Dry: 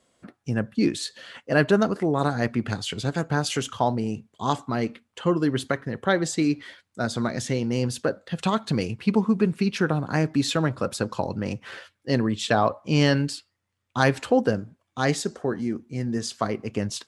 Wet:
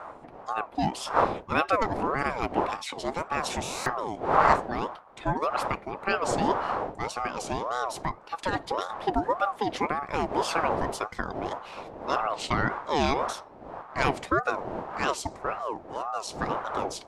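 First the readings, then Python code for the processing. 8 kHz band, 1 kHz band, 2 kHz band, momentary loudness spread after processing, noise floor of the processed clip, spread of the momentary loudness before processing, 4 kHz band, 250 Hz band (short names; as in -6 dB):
-5.0 dB, +4.0 dB, -2.0 dB, 9 LU, -48 dBFS, 9 LU, -5.5 dB, -10.0 dB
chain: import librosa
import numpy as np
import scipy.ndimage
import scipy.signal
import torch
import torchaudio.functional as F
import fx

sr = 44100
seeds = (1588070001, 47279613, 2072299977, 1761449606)

y = fx.dmg_wind(x, sr, seeds[0], corner_hz=330.0, level_db=-28.0)
y = fx.buffer_glitch(y, sr, at_s=(3.63,), block=1024, repeats=9)
y = fx.ring_lfo(y, sr, carrier_hz=740.0, swing_pct=35, hz=1.8)
y = F.gain(torch.from_numpy(y), -2.5).numpy()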